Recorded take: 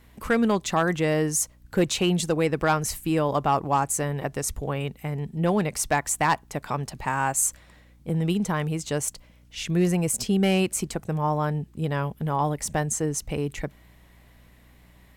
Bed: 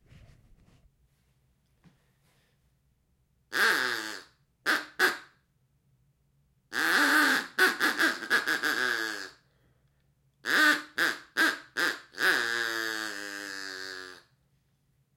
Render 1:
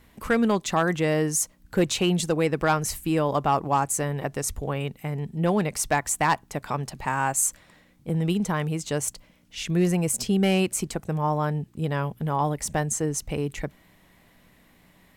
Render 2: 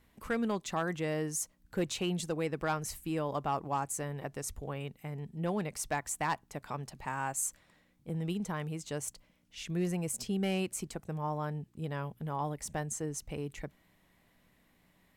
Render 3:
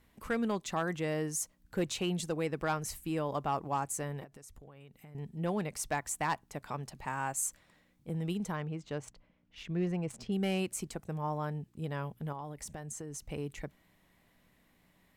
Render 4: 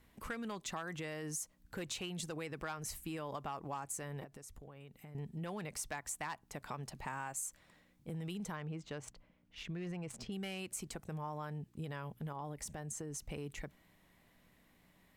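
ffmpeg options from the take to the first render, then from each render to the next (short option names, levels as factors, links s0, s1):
-af "bandreject=f=60:t=h:w=4,bandreject=f=120:t=h:w=4"
-af "volume=0.299"
-filter_complex "[0:a]asettb=1/sr,asplit=3[s0][s1][s2];[s0]atrim=end=4.244[s3];[s1]atrim=start=4.24:end=5.15,asetpts=PTS-STARTPTS,afade=t=in:d=0.004:c=qsin,afade=t=out:st=0.906:d=0.004:c=qsin,acompressor=threshold=0.00398:ratio=16:attack=3.2:release=140:knee=1:detection=peak[s4];[s2]atrim=start=5.146[s5];[s3][s4]acrossfade=d=0.004:c1=hsin:c2=qsin[s6];[s6][s5]acrossfade=d=0.004:c1=qsin:c2=hsin,asettb=1/sr,asplit=3[s7][s8][s9];[s7]atrim=end=8.564[s10];[s8]atrim=start=8.56:end=10.32,asetpts=PTS-STARTPTS,afade=t=in:d=0.004:c=qsin,afade=t=out:st=1.756:d=0.004:c=qsin,adynamicsmooth=sensitivity=5.5:basefreq=2800[s11];[s9]atrim=start=10.316[s12];[s10][s11]acrossfade=d=0.004:c1=hsin:c2=qsin[s13];[s13][s12]acrossfade=d=0.004:c1=qsin:c2=hsin,asettb=1/sr,asplit=3[s14][s15][s16];[s14]atrim=end=12.324[s17];[s15]atrim=start=12.32:end=13.3,asetpts=PTS-STARTPTS,afade=t=in:d=0.004:c=qsin,afade=t=out:st=0.976:d=0.004:c=qsin,acompressor=threshold=0.0126:ratio=6:attack=3.2:release=140:knee=1:detection=peak[s18];[s16]atrim=start=13.296[s19];[s17][s18]acrossfade=d=0.004:c1=hsin:c2=qsin[s20];[s20][s19]acrossfade=d=0.004:c1=qsin:c2=hsin"
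-filter_complex "[0:a]acrossover=split=1000[s0][s1];[s0]alimiter=level_in=2.82:limit=0.0631:level=0:latency=1,volume=0.355[s2];[s2][s1]amix=inputs=2:normalize=0,acompressor=threshold=0.0126:ratio=6"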